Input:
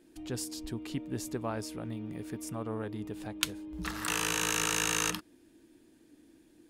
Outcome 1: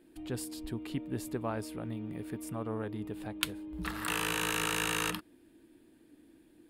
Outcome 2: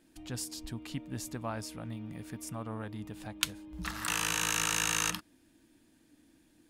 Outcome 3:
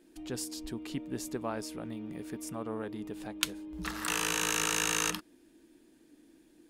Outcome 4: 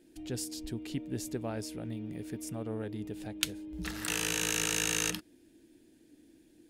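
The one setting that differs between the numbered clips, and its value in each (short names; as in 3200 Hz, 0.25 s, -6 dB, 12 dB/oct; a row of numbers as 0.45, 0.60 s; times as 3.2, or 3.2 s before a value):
bell, frequency: 6100, 390, 96, 1100 Hz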